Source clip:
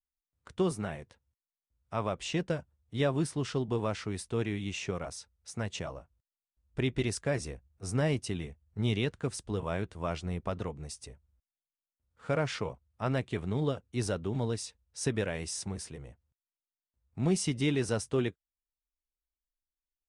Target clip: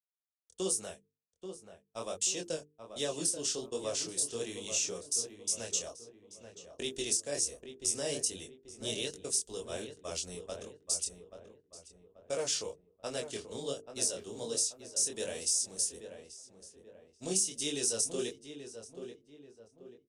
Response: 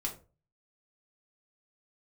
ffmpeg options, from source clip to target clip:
-filter_complex "[0:a]acrossover=split=270|1200[s0][s1][s2];[s2]aexciter=amount=11:drive=9:freq=3300[s3];[s0][s1][s3]amix=inputs=3:normalize=0,agate=range=0.00178:threshold=0.0282:ratio=16:detection=peak,acompressor=threshold=0.178:ratio=10,equalizer=f=6900:w=2.1:g=5,bandreject=f=1400:w=24,aresample=32000,aresample=44100,bandreject=f=50:t=h:w=6,bandreject=f=100:t=h:w=6,bandreject=f=150:t=h:w=6,bandreject=f=200:t=h:w=6,bandreject=f=250:t=h:w=6,bandreject=f=300:t=h:w=6,bandreject=f=350:t=h:w=6,bandreject=f=400:t=h:w=6,bandreject=f=450:t=h:w=6,flanger=delay=20:depth=7.5:speed=1.3,equalizer=f=125:t=o:w=1:g=-11,equalizer=f=500:t=o:w=1:g=8,equalizer=f=1000:t=o:w=1:g=-3,equalizer=f=2000:t=o:w=1:g=4,equalizer=f=4000:t=o:w=1:g=-9,equalizer=f=8000:t=o:w=1:g=-4,asplit=2[s4][s5];[s5]adelay=834,lowpass=f=1700:p=1,volume=0.376,asplit=2[s6][s7];[s7]adelay=834,lowpass=f=1700:p=1,volume=0.42,asplit=2[s8][s9];[s9]adelay=834,lowpass=f=1700:p=1,volume=0.42,asplit=2[s10][s11];[s11]adelay=834,lowpass=f=1700:p=1,volume=0.42,asplit=2[s12][s13];[s13]adelay=834,lowpass=f=1700:p=1,volume=0.42[s14];[s4][s6][s8][s10][s12][s14]amix=inputs=6:normalize=0,volume=0.501"

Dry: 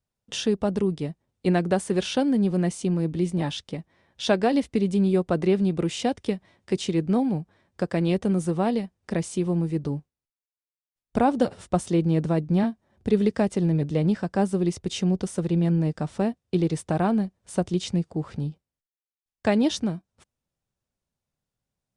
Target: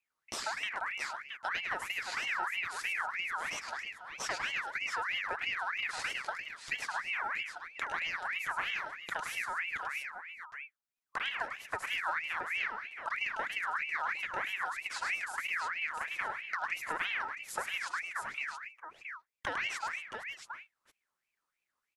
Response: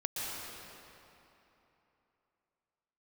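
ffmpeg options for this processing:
-af "acompressor=threshold=0.02:ratio=4,aecho=1:1:72|104|190|239|671|679:0.119|0.531|0.141|0.168|0.335|0.316,aeval=exprs='val(0)*sin(2*PI*1800*n/s+1800*0.4/3.1*sin(2*PI*3.1*n/s))':c=same"

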